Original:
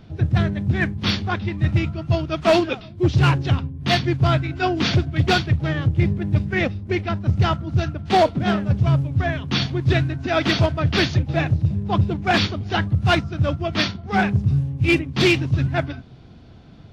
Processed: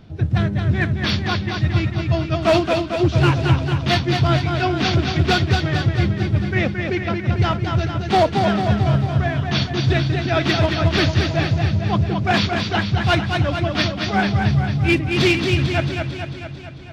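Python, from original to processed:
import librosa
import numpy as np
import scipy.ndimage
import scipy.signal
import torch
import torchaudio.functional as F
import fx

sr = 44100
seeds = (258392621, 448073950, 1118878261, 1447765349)

y = fx.echo_warbled(x, sr, ms=223, feedback_pct=63, rate_hz=2.8, cents=63, wet_db=-5)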